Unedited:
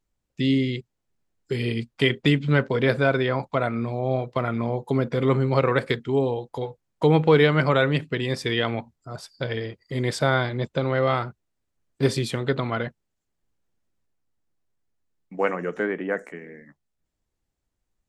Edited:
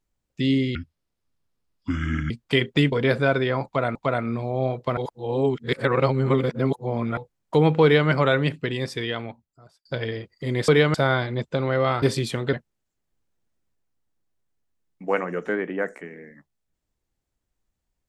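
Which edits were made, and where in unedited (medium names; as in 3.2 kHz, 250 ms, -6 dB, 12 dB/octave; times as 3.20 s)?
0.75–1.79 s: speed 67%
2.41–2.71 s: delete
3.44–3.74 s: loop, 2 plays
4.46–6.66 s: reverse
7.32–7.58 s: copy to 10.17 s
8.09–9.34 s: fade out
11.25–12.02 s: delete
12.53–12.84 s: delete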